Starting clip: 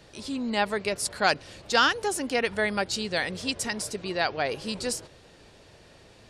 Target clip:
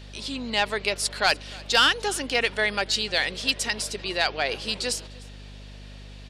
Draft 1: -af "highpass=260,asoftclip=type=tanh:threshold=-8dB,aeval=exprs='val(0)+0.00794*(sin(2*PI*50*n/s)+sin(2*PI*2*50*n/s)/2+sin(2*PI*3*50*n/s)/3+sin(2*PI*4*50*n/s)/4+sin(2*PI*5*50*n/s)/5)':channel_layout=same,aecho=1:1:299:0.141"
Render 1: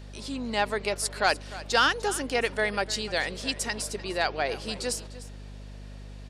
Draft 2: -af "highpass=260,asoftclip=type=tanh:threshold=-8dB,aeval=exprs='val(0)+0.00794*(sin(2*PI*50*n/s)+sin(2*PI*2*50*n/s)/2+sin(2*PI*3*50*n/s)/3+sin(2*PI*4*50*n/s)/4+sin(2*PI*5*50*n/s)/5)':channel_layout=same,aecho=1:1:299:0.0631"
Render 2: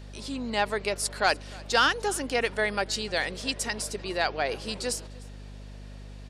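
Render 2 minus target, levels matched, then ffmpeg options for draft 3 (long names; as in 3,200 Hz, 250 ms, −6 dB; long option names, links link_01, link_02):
4,000 Hz band −3.5 dB
-af "highpass=260,equalizer=frequency=3300:width_type=o:width=1.5:gain=9,asoftclip=type=tanh:threshold=-8dB,aeval=exprs='val(0)+0.00794*(sin(2*PI*50*n/s)+sin(2*PI*2*50*n/s)/2+sin(2*PI*3*50*n/s)/3+sin(2*PI*4*50*n/s)/4+sin(2*PI*5*50*n/s)/5)':channel_layout=same,aecho=1:1:299:0.0631"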